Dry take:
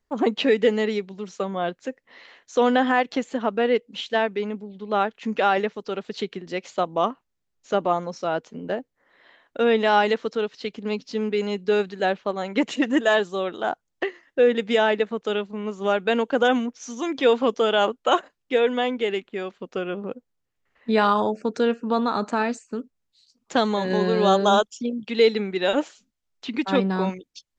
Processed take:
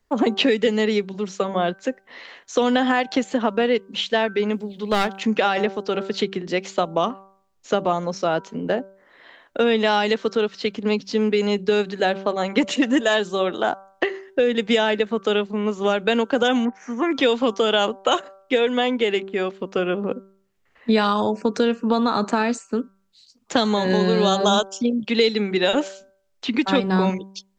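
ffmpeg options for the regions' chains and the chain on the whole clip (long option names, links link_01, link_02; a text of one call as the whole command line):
ffmpeg -i in.wav -filter_complex "[0:a]asettb=1/sr,asplit=3[link_01][link_02][link_03];[link_01]atrim=end=4.494[link_04];[link_02]atrim=start=4.49:end=5.23,asetpts=PTS-STARTPTS,afade=type=in:duration=0.004:curve=qsin,afade=type=out:start_time=0.736:duration=0.004:curve=qsin,highshelf=frequency=2600:gain=10,aeval=exprs='clip(val(0),-1,0.0668)':channel_layout=same[link_05];[link_03]atrim=start=5.226[link_06];[link_04][link_05]acrossfade=duration=0.004:curve1=hsin:curve2=qsin[link_07];[link_07][link_06]acrossfade=duration=0.004:curve1=qsin:curve2=hsin,asettb=1/sr,asplit=3[link_08][link_09][link_10];[link_08]atrim=end=16.654[link_11];[link_09]atrim=start=16.65:end=17.11,asetpts=PTS-STARTPTS,afade=type=in:duration=0.004:curve=qsin,afade=type=out:start_time=0.456:duration=0.004:curve=qsin,acrossover=split=6500[link_12][link_13];[link_13]acompressor=threshold=-59dB:ratio=4:attack=1:release=60[link_14];[link_12][link_14]amix=inputs=2:normalize=0,highshelf=frequency=2700:width_type=q:width=3:gain=-12.5[link_15];[link_10]atrim=start=17.106[link_16];[link_11][link_15]acrossfade=duration=0.004:curve1=hsin:curve2=qsin[link_17];[link_17][link_16]acrossfade=duration=0.004:curve1=qsin:curve2=hsin,bandreject=frequency=193.5:width_type=h:width=4,bandreject=frequency=387:width_type=h:width=4,bandreject=frequency=580.5:width_type=h:width=4,bandreject=frequency=774:width_type=h:width=4,bandreject=frequency=967.5:width_type=h:width=4,bandreject=frequency=1161:width_type=h:width=4,bandreject=frequency=1354.5:width_type=h:width=4,bandreject=frequency=1548:width_type=h:width=4,acrossover=split=180|3000[link_18][link_19][link_20];[link_19]acompressor=threshold=-24dB:ratio=6[link_21];[link_18][link_21][link_20]amix=inputs=3:normalize=0,volume=7dB" out.wav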